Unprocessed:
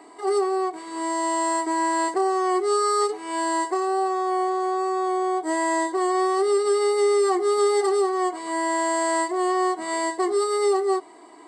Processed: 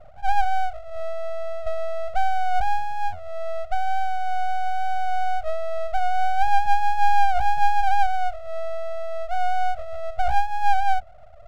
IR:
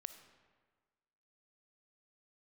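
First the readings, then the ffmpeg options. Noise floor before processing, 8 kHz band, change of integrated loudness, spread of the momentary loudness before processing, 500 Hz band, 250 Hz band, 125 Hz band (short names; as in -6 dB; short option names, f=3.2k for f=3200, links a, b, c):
-46 dBFS, under -15 dB, -2.5 dB, 5 LU, -10.0 dB, under -30 dB, n/a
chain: -af "afftfilt=real='re*between(b*sr/4096,200,410)':imag='im*between(b*sr/4096,200,410)':win_size=4096:overlap=0.75,aeval=exprs='abs(val(0))':c=same,volume=7.5dB"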